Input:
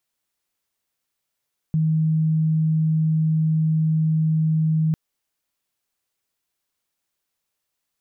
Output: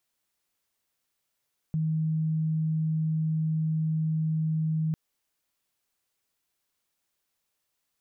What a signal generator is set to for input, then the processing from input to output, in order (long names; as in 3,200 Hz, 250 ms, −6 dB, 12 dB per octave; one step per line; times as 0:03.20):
tone sine 158 Hz −16.5 dBFS 3.20 s
brickwall limiter −24 dBFS